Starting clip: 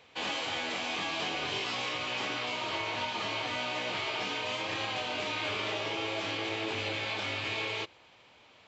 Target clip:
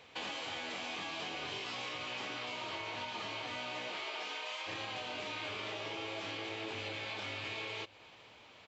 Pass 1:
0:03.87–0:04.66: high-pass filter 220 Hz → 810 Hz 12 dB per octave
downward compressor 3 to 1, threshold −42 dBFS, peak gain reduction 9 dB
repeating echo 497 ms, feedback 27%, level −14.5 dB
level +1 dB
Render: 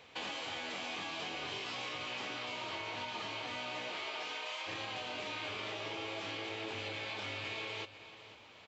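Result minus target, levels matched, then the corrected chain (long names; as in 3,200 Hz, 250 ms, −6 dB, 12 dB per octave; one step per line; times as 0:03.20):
echo-to-direct +9 dB
0:03.87–0:04.66: high-pass filter 220 Hz → 810 Hz 12 dB per octave
downward compressor 3 to 1, threshold −42 dBFS, peak gain reduction 9 dB
repeating echo 497 ms, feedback 27%, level −23.5 dB
level +1 dB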